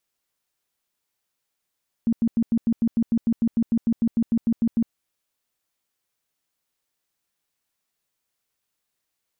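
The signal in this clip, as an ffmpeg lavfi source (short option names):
-f lavfi -i "aevalsrc='0.15*sin(2*PI*230*mod(t,0.15))*lt(mod(t,0.15),13/230)':d=2.85:s=44100"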